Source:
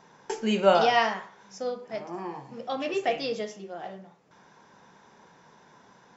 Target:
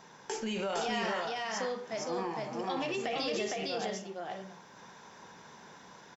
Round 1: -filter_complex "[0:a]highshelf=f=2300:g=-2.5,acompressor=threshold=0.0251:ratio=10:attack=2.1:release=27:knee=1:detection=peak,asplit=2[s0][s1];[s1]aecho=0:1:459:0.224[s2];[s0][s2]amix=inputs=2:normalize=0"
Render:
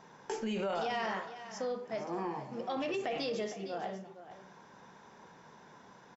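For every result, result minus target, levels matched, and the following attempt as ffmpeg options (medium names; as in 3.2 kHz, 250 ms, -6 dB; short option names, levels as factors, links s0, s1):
echo-to-direct -11 dB; 4 kHz band -4.0 dB
-filter_complex "[0:a]highshelf=f=2300:g=-2.5,acompressor=threshold=0.0251:ratio=10:attack=2.1:release=27:knee=1:detection=peak,asplit=2[s0][s1];[s1]aecho=0:1:459:0.794[s2];[s0][s2]amix=inputs=2:normalize=0"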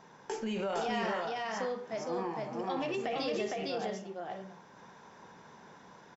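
4 kHz band -3.5 dB
-filter_complex "[0:a]highshelf=f=2300:g=6,acompressor=threshold=0.0251:ratio=10:attack=2.1:release=27:knee=1:detection=peak,asplit=2[s0][s1];[s1]aecho=0:1:459:0.794[s2];[s0][s2]amix=inputs=2:normalize=0"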